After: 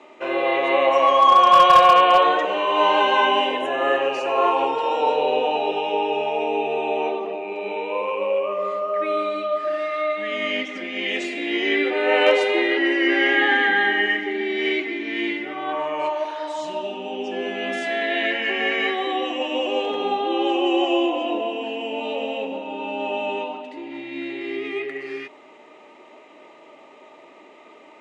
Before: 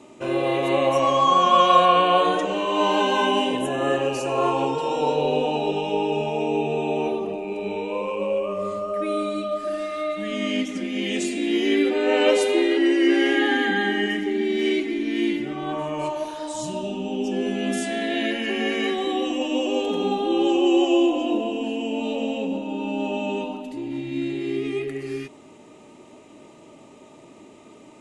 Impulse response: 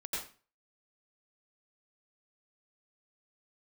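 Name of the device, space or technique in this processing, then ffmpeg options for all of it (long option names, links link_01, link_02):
megaphone: -af "highpass=530,lowpass=3100,equalizer=frequency=2000:width_type=o:width=0.29:gain=5,asoftclip=type=hard:threshold=-11.5dB,volume=5dB"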